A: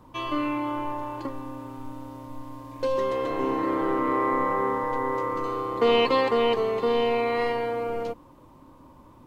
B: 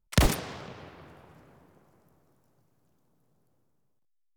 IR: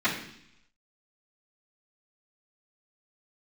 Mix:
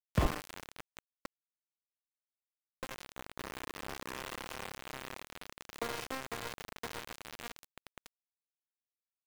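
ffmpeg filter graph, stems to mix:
-filter_complex "[0:a]acompressor=threshold=-33dB:ratio=2.5,volume=-4.5dB[a];[1:a]lowpass=1.6k,volume=-7dB[b];[a][b]amix=inputs=2:normalize=0,lowpass=2.7k,aeval=exprs='val(0)*gte(abs(val(0)),0.0299)':c=same"

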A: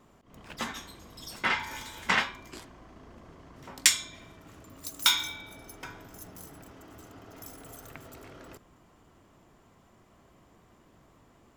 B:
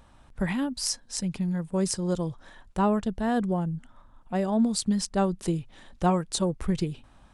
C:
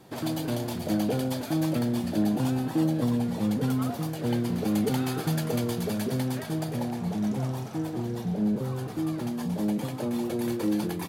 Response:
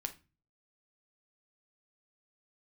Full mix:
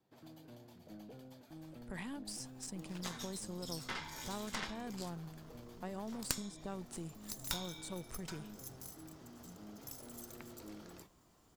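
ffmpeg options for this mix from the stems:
-filter_complex "[0:a]highshelf=f=3.4k:t=q:w=1.5:g=6.5,acrusher=bits=10:mix=0:aa=0.000001,adelay=2450,volume=-3dB[a];[1:a]equalizer=f=8.3k:t=o:w=0.77:g=8,alimiter=limit=-22dB:level=0:latency=1:release=11,adelay=1500,volume=-6.5dB[b];[2:a]equalizer=f=9.6k:t=o:w=0.2:g=-12.5,volume=-20dB[c];[a][b][c]amix=inputs=3:normalize=0,acrossover=split=380|1100[d][e][f];[d]acompressor=threshold=-39dB:ratio=4[g];[e]acompressor=threshold=-43dB:ratio=4[h];[f]acompressor=threshold=-37dB:ratio=4[i];[g][h][i]amix=inputs=3:normalize=0,aeval=exprs='0.631*(cos(1*acos(clip(val(0)/0.631,-1,1)))-cos(1*PI/2))+0.316*(cos(4*acos(clip(val(0)/0.631,-1,1)))-cos(4*PI/2))+0.0447*(cos(7*acos(clip(val(0)/0.631,-1,1)))-cos(7*PI/2))':c=same"

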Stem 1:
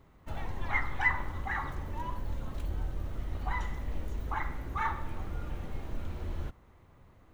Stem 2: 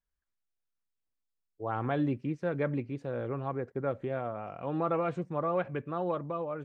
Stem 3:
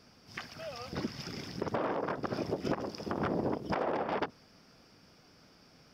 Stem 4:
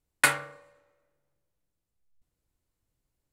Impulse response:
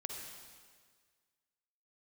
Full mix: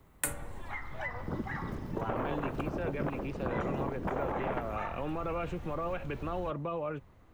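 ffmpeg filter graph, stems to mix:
-filter_complex "[0:a]acompressor=threshold=-35dB:ratio=4,volume=-0.5dB[a];[1:a]equalizer=f=2.7k:t=o:w=0.39:g=10.5,alimiter=level_in=4dB:limit=-24dB:level=0:latency=1:release=31,volume=-4dB,adelay=350,volume=2.5dB[b];[2:a]dynaudnorm=f=230:g=5:m=11dB,afwtdn=0.0316,aemphasis=mode=reproduction:type=bsi,adelay=350,volume=-14dB,asplit=2[c][d];[d]volume=-6.5dB[e];[3:a]equalizer=f=11k:t=o:w=0.77:g=-5,aexciter=amount=8.3:drive=6.4:freq=7k,volume=-6.5dB[f];[4:a]atrim=start_sample=2205[g];[e][g]afir=irnorm=-1:irlink=0[h];[a][b][c][f][h]amix=inputs=5:normalize=0,acrossover=split=200|620[i][j][k];[i]acompressor=threshold=-38dB:ratio=4[l];[j]acompressor=threshold=-37dB:ratio=4[m];[k]acompressor=threshold=-33dB:ratio=4[n];[l][m][n]amix=inputs=3:normalize=0"

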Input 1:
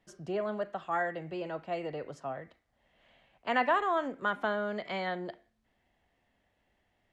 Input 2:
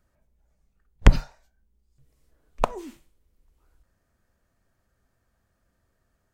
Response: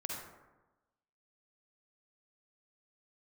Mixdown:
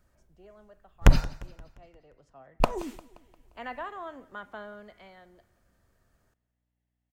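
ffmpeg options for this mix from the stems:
-filter_complex "[0:a]aeval=exprs='val(0)+0.000891*(sin(2*PI*60*n/s)+sin(2*PI*2*60*n/s)/2+sin(2*PI*3*60*n/s)/3+sin(2*PI*4*60*n/s)/4+sin(2*PI*5*60*n/s)/5)':c=same,adelay=100,volume=-10.5dB,afade=t=in:st=2.05:d=0.71:silence=0.316228,afade=t=out:st=4.65:d=0.52:silence=0.354813,asplit=2[a][b];[b]volume=-22.5dB[c];[1:a]volume=11dB,asoftclip=hard,volume=-11dB,volume=2.5dB,asplit=3[d][e][f];[d]atrim=end=1.75,asetpts=PTS-STARTPTS,afade=t=out:st=1.746:d=0.004:c=hsin[g];[e]atrim=start=1.75:end=2.6,asetpts=PTS-STARTPTS,volume=0[h];[f]atrim=start=2.6,asetpts=PTS-STARTPTS,afade=t=in:d=0.004:c=hsin[i];[g][h][i]concat=n=3:v=0:a=1,asplit=2[j][k];[k]volume=-20dB[l];[c][l]amix=inputs=2:normalize=0,aecho=0:1:175|350|525|700|875|1050|1225:1|0.48|0.23|0.111|0.0531|0.0255|0.0122[m];[a][j][m]amix=inputs=3:normalize=0"

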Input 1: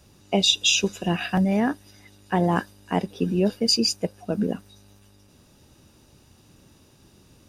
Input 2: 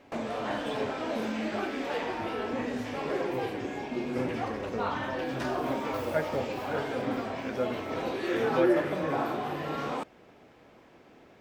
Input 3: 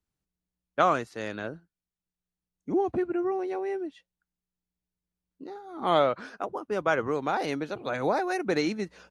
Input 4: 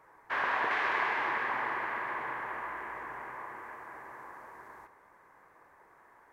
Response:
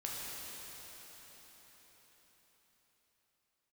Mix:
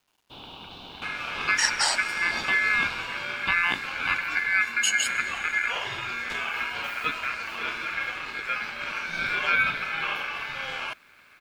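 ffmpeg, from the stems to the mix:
-filter_complex "[0:a]adelay=1150,volume=-2dB,asplit=2[a][b];[b]volume=-14.5dB[c];[1:a]adelay=900,volume=2.5dB[d];[3:a]volume=-10dB[e];[4:a]atrim=start_sample=2205[f];[c][f]afir=irnorm=-1:irlink=0[g];[a][d][e][g]amix=inputs=4:normalize=0,equalizer=f=260:t=o:w=0.77:g=2,aeval=exprs='val(0)*sin(2*PI*1900*n/s)':c=same,acrusher=bits=10:mix=0:aa=0.000001"

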